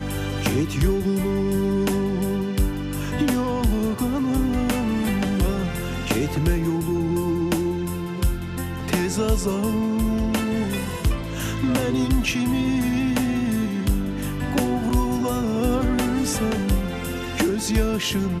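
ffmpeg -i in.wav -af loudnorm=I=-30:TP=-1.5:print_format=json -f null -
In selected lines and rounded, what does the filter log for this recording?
"input_i" : "-23.3",
"input_tp" : "-8.4",
"input_lra" : "1.3",
"input_thresh" : "-33.3",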